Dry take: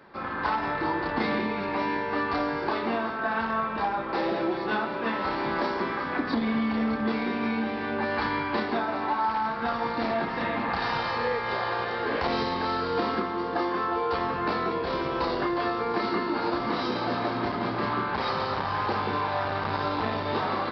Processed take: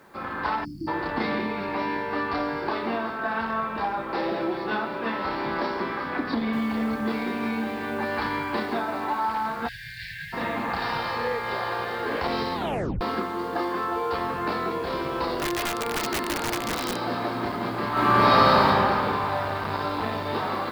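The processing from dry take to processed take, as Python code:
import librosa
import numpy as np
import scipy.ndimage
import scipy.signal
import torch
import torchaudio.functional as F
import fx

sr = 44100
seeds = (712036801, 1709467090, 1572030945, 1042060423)

y = fx.spec_erase(x, sr, start_s=0.65, length_s=0.23, low_hz=350.0, high_hz=4400.0)
y = fx.noise_floor_step(y, sr, seeds[0], at_s=6.53, before_db=-68, after_db=-57, tilt_db=0.0)
y = fx.brickwall_bandstop(y, sr, low_hz=160.0, high_hz=1500.0, at=(9.67, 10.32), fade=0.02)
y = fx.overflow_wrap(y, sr, gain_db=20.5, at=(15.37, 16.96))
y = fx.reverb_throw(y, sr, start_s=17.91, length_s=0.74, rt60_s=2.8, drr_db=-10.0)
y = fx.edit(y, sr, fx.tape_stop(start_s=12.55, length_s=0.46), tone=tone)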